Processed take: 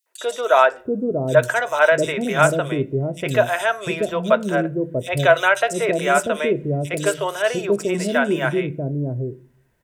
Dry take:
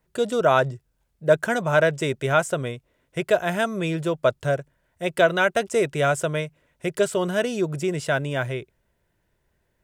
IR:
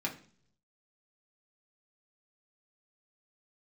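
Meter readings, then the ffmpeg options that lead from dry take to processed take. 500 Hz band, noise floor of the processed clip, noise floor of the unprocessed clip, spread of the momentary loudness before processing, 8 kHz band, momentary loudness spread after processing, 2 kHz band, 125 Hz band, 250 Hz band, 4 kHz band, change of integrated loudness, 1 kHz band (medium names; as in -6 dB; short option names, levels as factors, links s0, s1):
+3.5 dB, -55 dBFS, -72 dBFS, 11 LU, +5.0 dB, 9 LU, +5.0 dB, +3.0 dB, +4.5 dB, +3.0 dB, +3.5 dB, +5.0 dB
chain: -filter_complex "[0:a]acrossover=split=470|3600[s0][s1][s2];[s1]adelay=60[s3];[s0]adelay=700[s4];[s4][s3][s2]amix=inputs=3:normalize=0,asplit=2[s5][s6];[1:a]atrim=start_sample=2205,asetrate=48510,aresample=44100[s7];[s6][s7]afir=irnorm=-1:irlink=0,volume=0.316[s8];[s5][s8]amix=inputs=2:normalize=0,volume=1.5"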